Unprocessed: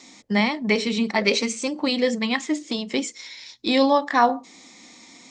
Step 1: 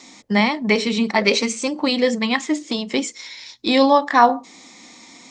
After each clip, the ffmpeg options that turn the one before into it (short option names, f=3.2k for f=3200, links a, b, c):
-af "equalizer=f=1k:w=1.5:g=2.5,volume=3dB"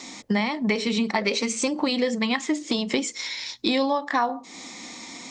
-af "acompressor=threshold=-26dB:ratio=5,volume=4.5dB"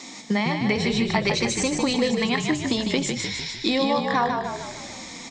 -filter_complex "[0:a]asplit=8[a][b][c][d][e][f][g][h];[b]adelay=151,afreqshift=-38,volume=-5dB[i];[c]adelay=302,afreqshift=-76,volume=-10.2dB[j];[d]adelay=453,afreqshift=-114,volume=-15.4dB[k];[e]adelay=604,afreqshift=-152,volume=-20.6dB[l];[f]adelay=755,afreqshift=-190,volume=-25.8dB[m];[g]adelay=906,afreqshift=-228,volume=-31dB[n];[h]adelay=1057,afreqshift=-266,volume=-36.2dB[o];[a][i][j][k][l][m][n][o]amix=inputs=8:normalize=0"